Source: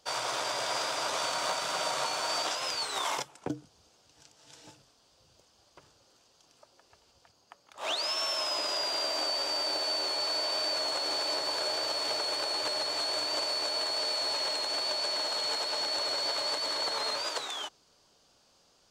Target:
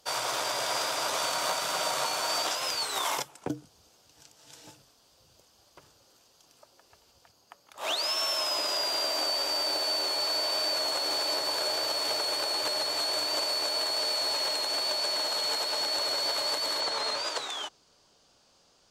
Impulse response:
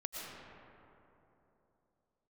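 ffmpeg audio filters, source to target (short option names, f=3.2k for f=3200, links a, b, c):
-af "asetnsamples=n=441:p=0,asendcmd='16.8 equalizer g -2.5',equalizer=f=13k:t=o:w=0.56:g=12.5,volume=1.5dB"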